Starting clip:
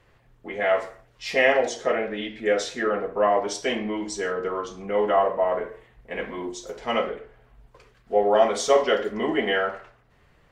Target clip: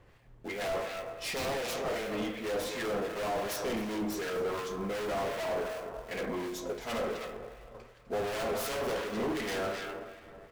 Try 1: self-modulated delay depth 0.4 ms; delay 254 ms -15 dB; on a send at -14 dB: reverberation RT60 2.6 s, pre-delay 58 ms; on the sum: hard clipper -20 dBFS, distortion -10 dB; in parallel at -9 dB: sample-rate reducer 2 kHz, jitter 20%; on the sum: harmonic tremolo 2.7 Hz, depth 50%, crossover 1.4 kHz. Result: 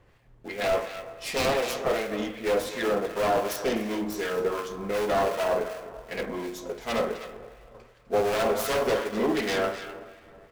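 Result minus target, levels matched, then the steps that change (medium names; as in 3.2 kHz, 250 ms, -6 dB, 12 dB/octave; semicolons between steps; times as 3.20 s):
hard clipper: distortion -7 dB
change: hard clipper -31 dBFS, distortion -3 dB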